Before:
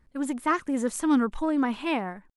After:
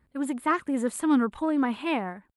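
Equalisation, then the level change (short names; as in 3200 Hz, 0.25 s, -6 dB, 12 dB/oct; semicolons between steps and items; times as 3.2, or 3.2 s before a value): HPF 58 Hz; bell 5900 Hz -11 dB 0.46 oct; 0.0 dB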